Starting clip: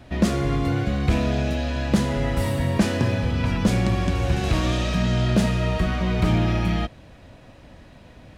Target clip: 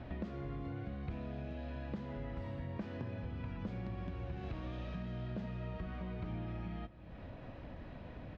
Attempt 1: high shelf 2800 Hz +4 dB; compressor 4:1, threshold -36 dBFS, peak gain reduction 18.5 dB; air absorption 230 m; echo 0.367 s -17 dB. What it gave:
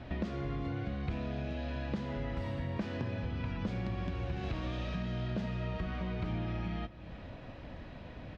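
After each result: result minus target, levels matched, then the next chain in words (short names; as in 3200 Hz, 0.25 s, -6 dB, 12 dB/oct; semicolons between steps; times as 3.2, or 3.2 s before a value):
compressor: peak gain reduction -5.5 dB; 4000 Hz band +4.5 dB
high shelf 2800 Hz +4 dB; compressor 4:1, threshold -43.5 dBFS, peak gain reduction 24 dB; air absorption 230 m; echo 0.367 s -17 dB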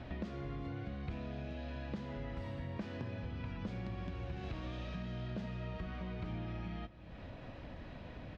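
4000 Hz band +4.5 dB
high shelf 2800 Hz -4.5 dB; compressor 4:1, threshold -43.5 dBFS, peak gain reduction 24 dB; air absorption 230 m; echo 0.367 s -17 dB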